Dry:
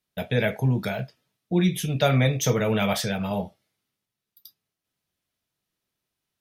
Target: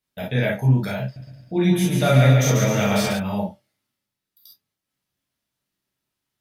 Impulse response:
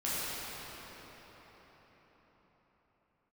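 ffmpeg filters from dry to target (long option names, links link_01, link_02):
-filter_complex "[0:a]asettb=1/sr,asplit=3[link_01][link_02][link_03];[link_01]atrim=end=1.024[link_04];[link_02]atrim=start=1.02:end=3.13,asetpts=PTS-STARTPTS,afade=type=in:duration=0.004:curve=qsin,afade=type=out:start_time=2.106:duration=0.004:curve=qsin,aecho=1:1:140|252|341.6|413.3|470.6:0.631|0.398|0.251|0.158|0.1,atrim=end_sample=93051[link_05];[link_03]atrim=start=3.126[link_06];[link_04][link_05]acrossfade=duration=0.004:curve1=hsin:curve2=qsin[link_07];[link_07][link_06]acrossfade=duration=0.004:curve1=qsin:curve2=hsin[link_08];[1:a]atrim=start_sample=2205,atrim=end_sample=3087[link_09];[link_08][link_09]afir=irnorm=-1:irlink=0"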